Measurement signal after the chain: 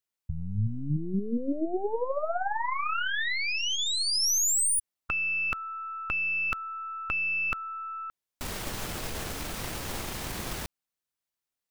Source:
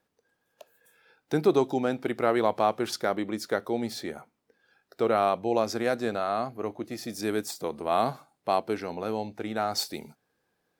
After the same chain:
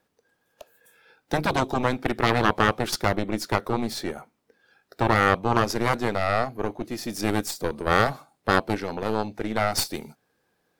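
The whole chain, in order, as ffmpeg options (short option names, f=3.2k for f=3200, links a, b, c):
-af "aeval=exprs='0.355*(cos(1*acos(clip(val(0)/0.355,-1,1)))-cos(1*PI/2))+0.158*(cos(4*acos(clip(val(0)/0.355,-1,1)))-cos(4*PI/2))':c=same,afftfilt=real='re*lt(hypot(re,im),0.398)':imag='im*lt(hypot(re,im),0.398)':win_size=1024:overlap=0.75,volume=4.5dB"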